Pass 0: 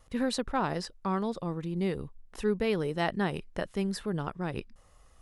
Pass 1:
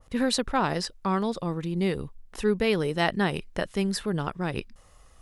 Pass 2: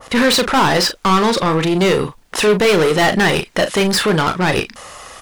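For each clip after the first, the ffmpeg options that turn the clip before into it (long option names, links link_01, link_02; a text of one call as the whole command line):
ffmpeg -i in.wav -af "adynamicequalizer=threshold=0.00562:dfrequency=1700:dqfactor=0.7:tfrequency=1700:tqfactor=0.7:attack=5:release=100:ratio=0.375:range=2:mode=boostabove:tftype=highshelf,volume=4dB" out.wav
ffmpeg -i in.wav -filter_complex "[0:a]asplit=2[link_01][link_02];[link_02]highpass=frequency=720:poles=1,volume=31dB,asoftclip=type=tanh:threshold=-9dB[link_03];[link_01][link_03]amix=inputs=2:normalize=0,lowpass=frequency=6000:poles=1,volume=-6dB,asplit=2[link_04][link_05];[link_05]adelay=38,volume=-9dB[link_06];[link_04][link_06]amix=inputs=2:normalize=0,volume=2.5dB" out.wav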